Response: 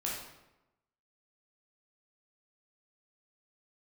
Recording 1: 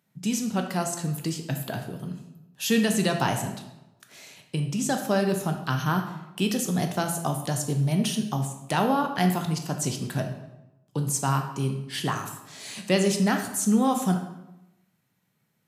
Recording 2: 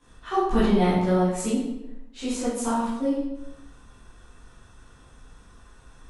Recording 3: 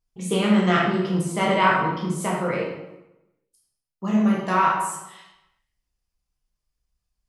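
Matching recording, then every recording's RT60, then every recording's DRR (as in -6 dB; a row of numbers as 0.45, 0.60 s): 3; 0.95, 0.95, 0.95 s; 4.5, -14.0, -4.5 dB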